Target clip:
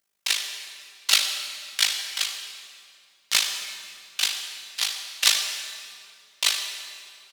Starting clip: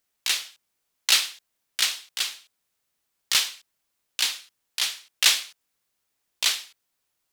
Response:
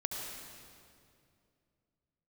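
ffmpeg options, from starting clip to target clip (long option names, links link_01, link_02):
-filter_complex "[0:a]equalizer=frequency=15000:width_type=o:width=0.3:gain=-3.5,aecho=1:1:5.1:0.69,tremolo=f=52:d=0.857,asplit=2[link_01][link_02];[1:a]atrim=start_sample=2205,lowshelf=frequency=150:gain=-11[link_03];[link_02][link_03]afir=irnorm=-1:irlink=0,volume=-1.5dB[link_04];[link_01][link_04]amix=inputs=2:normalize=0,volume=-2.5dB"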